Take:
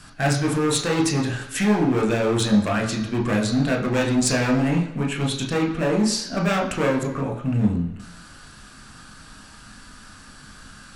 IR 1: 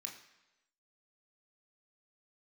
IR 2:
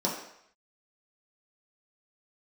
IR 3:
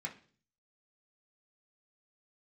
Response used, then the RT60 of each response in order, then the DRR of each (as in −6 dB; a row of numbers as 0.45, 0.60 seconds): 1; 1.0, 0.70, 0.45 seconds; 0.5, −5.0, −2.5 decibels